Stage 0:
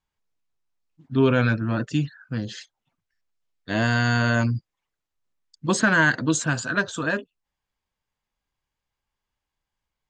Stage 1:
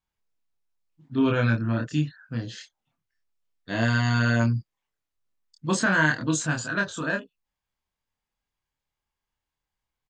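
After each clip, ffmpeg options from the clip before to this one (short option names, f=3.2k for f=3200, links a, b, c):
-filter_complex "[0:a]asplit=2[a][b];[b]adelay=26,volume=-2.5dB[c];[a][c]amix=inputs=2:normalize=0,volume=-4.5dB"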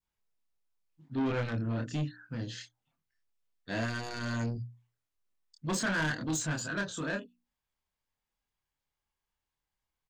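-af "adynamicequalizer=threshold=0.0126:dfrequency=1300:dqfactor=0.81:tfrequency=1300:tqfactor=0.81:attack=5:release=100:ratio=0.375:range=3:mode=cutabove:tftype=bell,asoftclip=type=tanh:threshold=-24dB,bandreject=f=60:t=h:w=6,bandreject=f=120:t=h:w=6,bandreject=f=180:t=h:w=6,bandreject=f=240:t=h:w=6,bandreject=f=300:t=h:w=6,volume=-2.5dB"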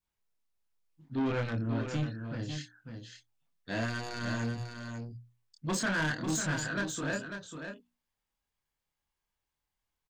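-af "aecho=1:1:545:0.422"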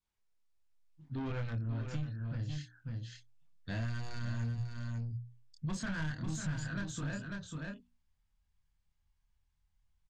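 -af "lowpass=8.6k,asubboost=boost=8.5:cutoff=130,acompressor=threshold=-36dB:ratio=2.5,volume=-1.5dB"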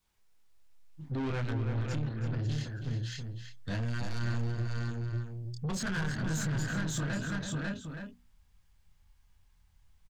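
-filter_complex "[0:a]asplit=2[a][b];[b]alimiter=level_in=14dB:limit=-24dB:level=0:latency=1:release=234,volume=-14dB,volume=-1.5dB[c];[a][c]amix=inputs=2:normalize=0,asoftclip=type=tanh:threshold=-36.5dB,asplit=2[d][e];[e]adelay=326.5,volume=-6dB,highshelf=f=4k:g=-7.35[f];[d][f]amix=inputs=2:normalize=0,volume=6.5dB"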